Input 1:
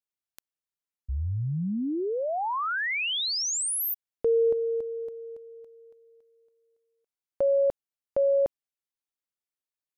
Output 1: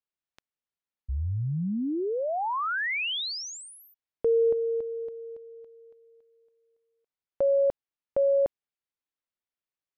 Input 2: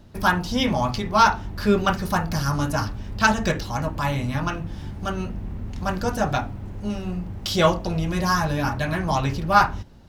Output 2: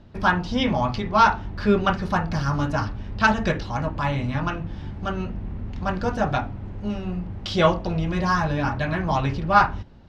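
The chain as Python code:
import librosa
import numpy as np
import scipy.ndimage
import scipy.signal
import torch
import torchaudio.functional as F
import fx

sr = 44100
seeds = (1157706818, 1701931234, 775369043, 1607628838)

y = scipy.signal.sosfilt(scipy.signal.butter(2, 3800.0, 'lowpass', fs=sr, output='sos'), x)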